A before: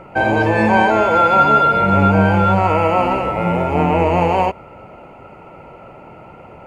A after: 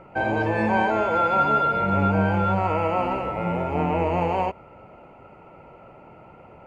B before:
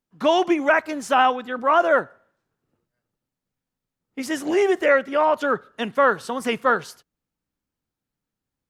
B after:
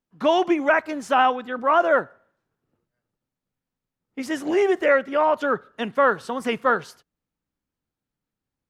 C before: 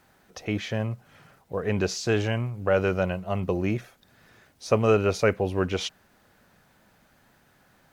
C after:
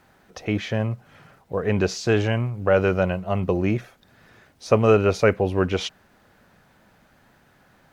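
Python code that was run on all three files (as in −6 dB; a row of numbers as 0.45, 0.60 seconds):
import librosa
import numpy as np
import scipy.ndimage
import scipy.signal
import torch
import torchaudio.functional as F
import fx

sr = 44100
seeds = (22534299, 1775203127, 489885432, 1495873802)

y = fx.high_shelf(x, sr, hz=4700.0, db=-6.5)
y = y * 10.0 ** (-24 / 20.0) / np.sqrt(np.mean(np.square(y)))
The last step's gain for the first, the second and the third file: −8.0, −0.5, +4.0 decibels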